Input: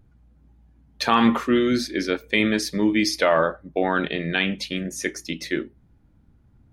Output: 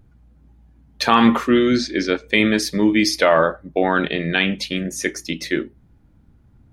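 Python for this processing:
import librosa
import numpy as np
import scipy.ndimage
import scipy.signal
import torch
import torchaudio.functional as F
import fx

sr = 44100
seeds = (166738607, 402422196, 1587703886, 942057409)

y = fx.lowpass(x, sr, hz=7300.0, slope=24, at=(1.5, 2.28))
y = y * librosa.db_to_amplitude(4.0)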